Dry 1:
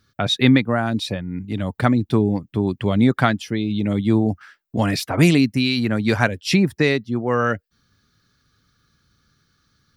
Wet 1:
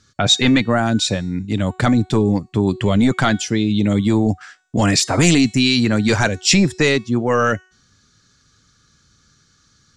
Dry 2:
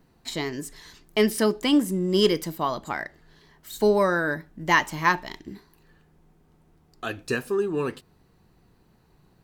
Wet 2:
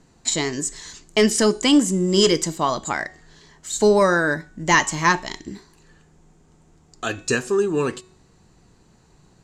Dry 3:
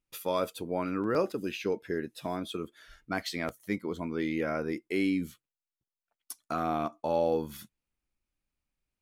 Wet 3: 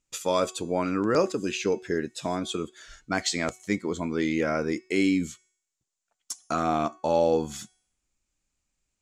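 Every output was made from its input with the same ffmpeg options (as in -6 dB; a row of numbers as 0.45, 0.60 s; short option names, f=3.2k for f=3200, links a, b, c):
-af "apsyclip=13.5dB,lowpass=f=7.2k:t=q:w=5.3,bandreject=f=371.4:t=h:w=4,bandreject=f=742.8:t=h:w=4,bandreject=f=1.1142k:t=h:w=4,bandreject=f=1.4856k:t=h:w=4,bandreject=f=1.857k:t=h:w=4,bandreject=f=2.2284k:t=h:w=4,bandreject=f=2.5998k:t=h:w=4,bandreject=f=2.9712k:t=h:w=4,bandreject=f=3.3426k:t=h:w=4,bandreject=f=3.714k:t=h:w=4,bandreject=f=4.0854k:t=h:w=4,bandreject=f=4.4568k:t=h:w=4,bandreject=f=4.8282k:t=h:w=4,bandreject=f=5.1996k:t=h:w=4,bandreject=f=5.571k:t=h:w=4,bandreject=f=5.9424k:t=h:w=4,bandreject=f=6.3138k:t=h:w=4,bandreject=f=6.6852k:t=h:w=4,bandreject=f=7.0566k:t=h:w=4,bandreject=f=7.428k:t=h:w=4,bandreject=f=7.7994k:t=h:w=4,bandreject=f=8.1708k:t=h:w=4,bandreject=f=8.5422k:t=h:w=4,bandreject=f=8.9136k:t=h:w=4,bandreject=f=9.285k:t=h:w=4,bandreject=f=9.6564k:t=h:w=4,bandreject=f=10.0278k:t=h:w=4,bandreject=f=10.3992k:t=h:w=4,volume=-8.5dB"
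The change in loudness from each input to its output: +3.0, +4.5, +5.0 LU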